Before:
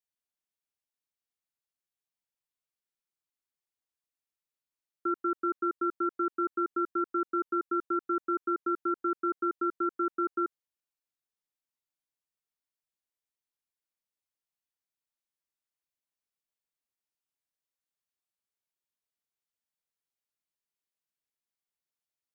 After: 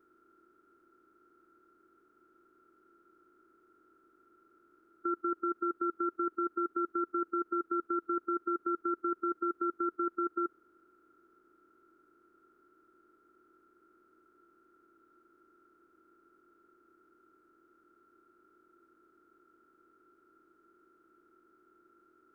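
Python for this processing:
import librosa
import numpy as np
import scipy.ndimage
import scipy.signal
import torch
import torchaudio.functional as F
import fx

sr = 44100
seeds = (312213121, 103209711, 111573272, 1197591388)

y = fx.bin_compress(x, sr, power=0.4)
y = y * 10.0 ** (-3.5 / 20.0)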